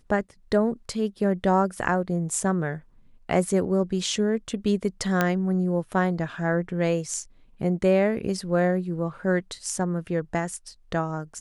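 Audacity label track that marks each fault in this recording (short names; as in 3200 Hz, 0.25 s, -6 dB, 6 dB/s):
5.210000	5.210000	pop -8 dBFS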